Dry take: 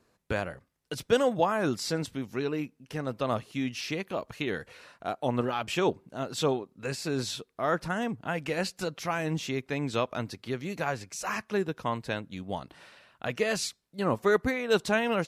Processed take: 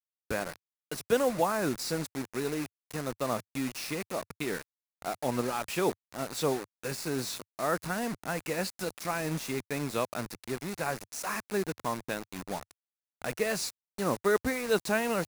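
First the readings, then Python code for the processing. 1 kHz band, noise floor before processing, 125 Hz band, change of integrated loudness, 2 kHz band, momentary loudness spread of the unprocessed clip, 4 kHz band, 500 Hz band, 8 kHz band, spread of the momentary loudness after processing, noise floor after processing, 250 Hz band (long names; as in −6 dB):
−2.0 dB, −72 dBFS, −3.5 dB, −2.0 dB, −2.0 dB, 11 LU, −3.0 dB, −2.0 dB, +2.5 dB, 11 LU, below −85 dBFS, −2.0 dB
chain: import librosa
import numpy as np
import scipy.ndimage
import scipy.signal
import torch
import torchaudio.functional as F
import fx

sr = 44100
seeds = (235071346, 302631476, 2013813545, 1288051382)

y = fx.quant_dither(x, sr, seeds[0], bits=6, dither='none')
y = fx.graphic_eq_31(y, sr, hz=(100, 3150, 10000), db=(-11, -7, 4))
y = F.gain(torch.from_numpy(y), -2.0).numpy()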